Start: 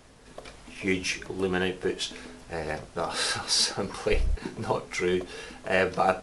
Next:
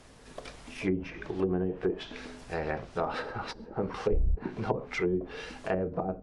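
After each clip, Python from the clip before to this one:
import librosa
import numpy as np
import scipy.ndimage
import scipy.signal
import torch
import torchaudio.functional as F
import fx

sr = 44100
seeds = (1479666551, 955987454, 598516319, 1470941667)

y = fx.env_lowpass_down(x, sr, base_hz=350.0, full_db=-22.0)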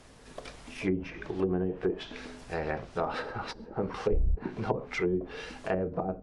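y = x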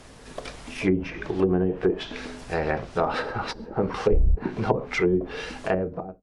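y = fx.fade_out_tail(x, sr, length_s=0.58)
y = F.gain(torch.from_numpy(y), 7.0).numpy()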